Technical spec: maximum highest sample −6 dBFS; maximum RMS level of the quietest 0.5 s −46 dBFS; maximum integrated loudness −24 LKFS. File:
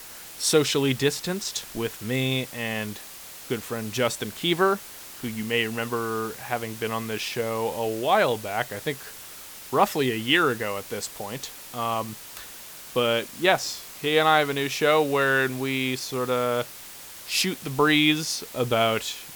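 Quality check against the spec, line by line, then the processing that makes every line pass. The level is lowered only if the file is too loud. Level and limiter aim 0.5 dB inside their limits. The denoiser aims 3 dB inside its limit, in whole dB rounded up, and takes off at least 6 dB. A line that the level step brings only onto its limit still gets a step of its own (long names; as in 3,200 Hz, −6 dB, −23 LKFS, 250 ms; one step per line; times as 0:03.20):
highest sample −5.0 dBFS: out of spec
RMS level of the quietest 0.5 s −42 dBFS: out of spec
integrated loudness −25.0 LKFS: in spec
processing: broadband denoise 7 dB, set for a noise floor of −42 dBFS
brickwall limiter −6.5 dBFS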